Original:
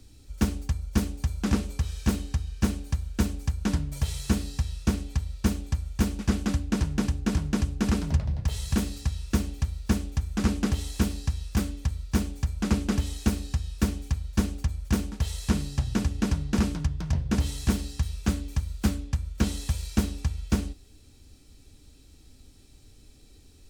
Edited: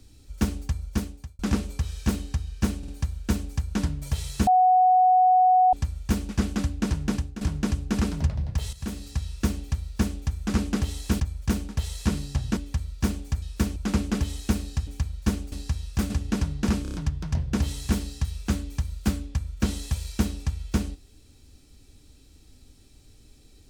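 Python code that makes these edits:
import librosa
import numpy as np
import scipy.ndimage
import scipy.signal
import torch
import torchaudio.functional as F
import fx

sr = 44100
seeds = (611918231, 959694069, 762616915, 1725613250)

y = fx.edit(x, sr, fx.fade_out_span(start_s=0.84, length_s=0.55),
    fx.stutter(start_s=2.78, slice_s=0.05, count=3),
    fx.bleep(start_s=4.37, length_s=1.26, hz=739.0, db=-14.5),
    fx.fade_out_to(start_s=7.05, length_s=0.26, floor_db=-14.5),
    fx.fade_in_from(start_s=8.63, length_s=0.5, floor_db=-13.0),
    fx.swap(start_s=11.1, length_s=0.58, other_s=14.63, other_length_s=1.37),
    fx.move(start_s=13.64, length_s=0.34, to_s=12.53),
    fx.stutter(start_s=16.72, slice_s=0.03, count=5), tone=tone)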